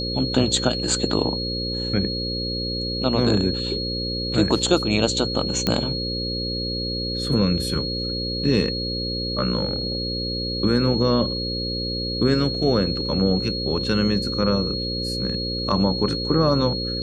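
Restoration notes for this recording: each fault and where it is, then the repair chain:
buzz 60 Hz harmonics 9 -29 dBFS
whine 4.3 kHz -27 dBFS
5.67 s: pop -7 dBFS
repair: de-click; de-hum 60 Hz, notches 9; band-stop 4.3 kHz, Q 30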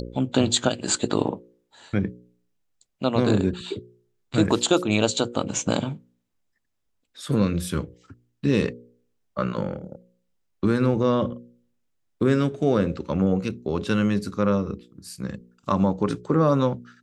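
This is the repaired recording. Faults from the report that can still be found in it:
nothing left

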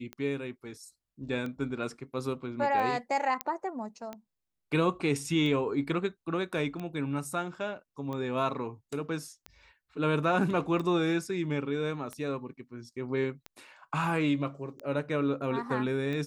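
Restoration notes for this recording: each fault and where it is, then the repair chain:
tick 45 rpm -25 dBFS
3.41 s: pop -13 dBFS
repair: de-click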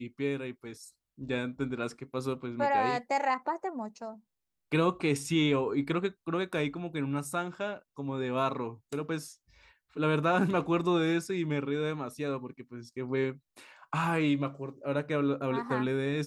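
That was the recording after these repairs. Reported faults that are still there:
nothing left

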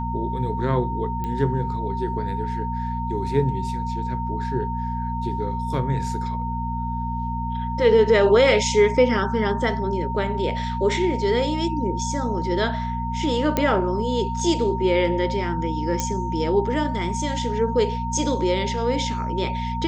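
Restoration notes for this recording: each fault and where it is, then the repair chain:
hum 60 Hz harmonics 4 -28 dBFS
whine 920 Hz -28 dBFS
1.24 s: pop -17 dBFS
13.57 s: pop -7 dBFS
16.00 s: pop -9 dBFS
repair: de-click; de-hum 60 Hz, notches 4; band-stop 920 Hz, Q 30

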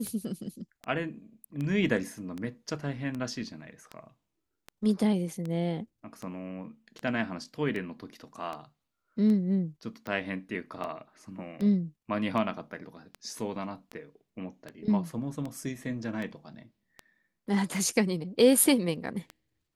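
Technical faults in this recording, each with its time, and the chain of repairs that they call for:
tick 78 rpm -24 dBFS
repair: de-click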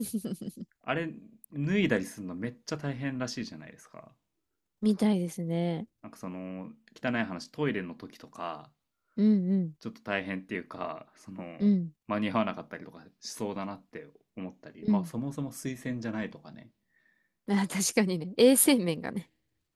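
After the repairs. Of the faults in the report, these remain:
nothing left

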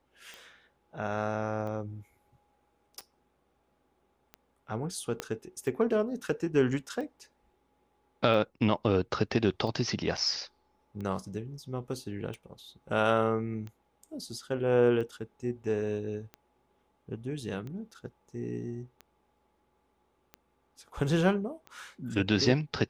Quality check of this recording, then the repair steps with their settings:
tick 45 rpm -29 dBFS
5.20 s: pop -17 dBFS
10.17–10.18 s: dropout 6.6 ms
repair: de-click; interpolate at 10.17 s, 6.6 ms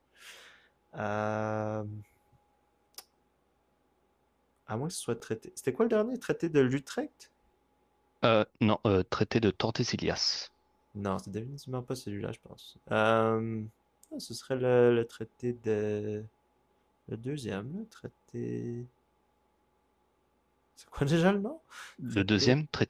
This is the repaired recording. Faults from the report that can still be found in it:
5.20 s: pop

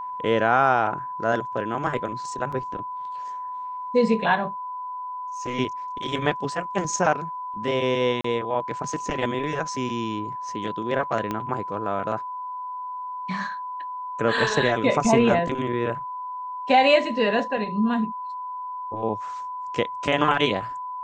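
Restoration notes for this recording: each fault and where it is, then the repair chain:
whine 1 kHz -30 dBFS
2.52–2.53 s: dropout 5.4 ms
8.21–8.24 s: dropout 34 ms
11.31 s: pop -14 dBFS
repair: de-click; band-stop 1 kHz, Q 30; interpolate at 2.52 s, 5.4 ms; interpolate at 8.21 s, 34 ms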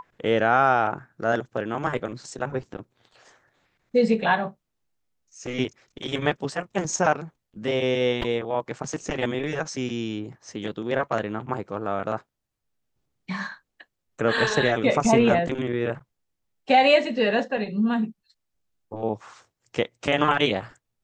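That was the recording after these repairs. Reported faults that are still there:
11.31 s: pop

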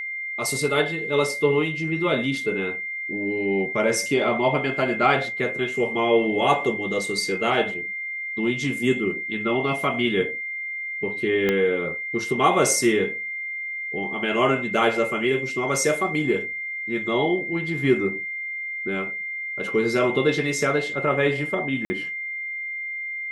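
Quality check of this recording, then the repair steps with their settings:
whine 2.1 kHz -28 dBFS
11.49 s: pop -10 dBFS
21.85–21.90 s: dropout 50 ms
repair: de-click; band-stop 2.1 kHz, Q 30; interpolate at 21.85 s, 50 ms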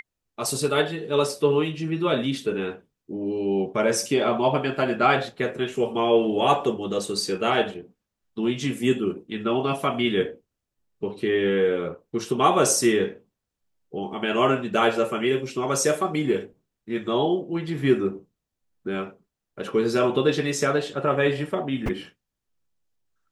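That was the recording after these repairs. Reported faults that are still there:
11.49 s: pop

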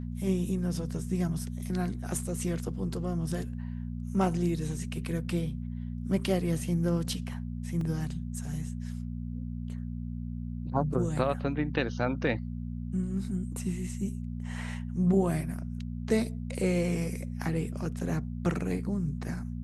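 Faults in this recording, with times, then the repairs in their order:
hum 60 Hz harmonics 4 -36 dBFS
7.81 s: dropout 2.2 ms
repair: de-hum 60 Hz, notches 4; interpolate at 7.81 s, 2.2 ms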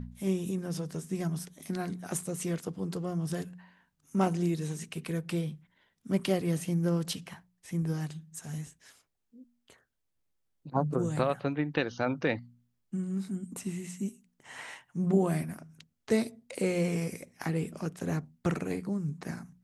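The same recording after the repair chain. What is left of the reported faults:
nothing left

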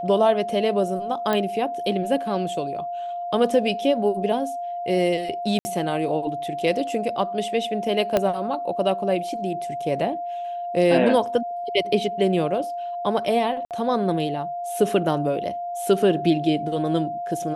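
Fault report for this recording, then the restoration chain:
whine 700 Hz -27 dBFS
1.33 s: pop -10 dBFS
5.59–5.65 s: dropout 60 ms
8.17 s: pop -7 dBFS
13.65–13.71 s: dropout 58 ms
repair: de-click; band-stop 700 Hz, Q 30; interpolate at 5.59 s, 60 ms; interpolate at 13.65 s, 58 ms

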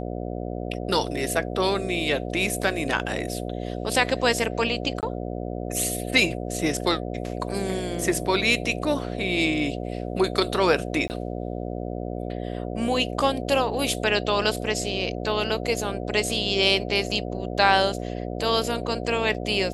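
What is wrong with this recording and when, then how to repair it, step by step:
buzz 60 Hz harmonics 12 -31 dBFS
5.01–5.03 s: dropout 18 ms
11.08–11.10 s: dropout 19 ms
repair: de-hum 60 Hz, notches 12; interpolate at 5.01 s, 18 ms; interpolate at 11.08 s, 19 ms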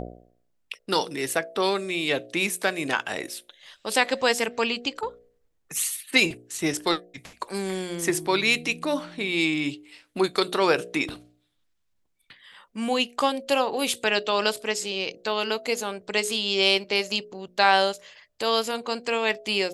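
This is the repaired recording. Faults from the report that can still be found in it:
nothing left

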